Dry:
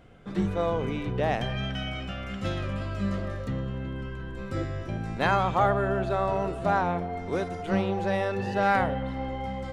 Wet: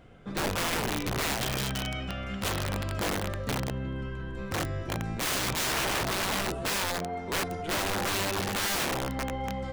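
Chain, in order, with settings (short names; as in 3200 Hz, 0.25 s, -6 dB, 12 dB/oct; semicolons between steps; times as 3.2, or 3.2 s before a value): 6.62–7.37 low shelf 110 Hz -9.5 dB; wrapped overs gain 24 dB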